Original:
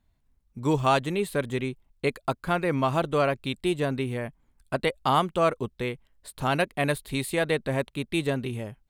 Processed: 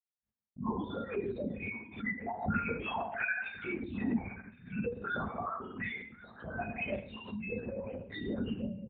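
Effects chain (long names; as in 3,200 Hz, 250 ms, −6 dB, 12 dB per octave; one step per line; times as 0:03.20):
time-frequency cells dropped at random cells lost 78%
noise gate −56 dBFS, range −51 dB
leveller curve on the samples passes 5
downward compressor 12 to 1, threshold −34 dBFS, peak gain reduction 18.5 dB
spectral peaks only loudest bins 4
on a send: single-tap delay 1,077 ms −20 dB
on the sum: rectangular room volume 150 cubic metres, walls mixed, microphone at 1.6 metres
linear-prediction vocoder at 8 kHz whisper
loudspeaker in its box 120–2,900 Hz, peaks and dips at 140 Hz −7 dB, 220 Hz +8 dB, 320 Hz −6 dB, 600 Hz −5 dB, 1,600 Hz +6 dB
background raised ahead of every attack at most 130 dB per second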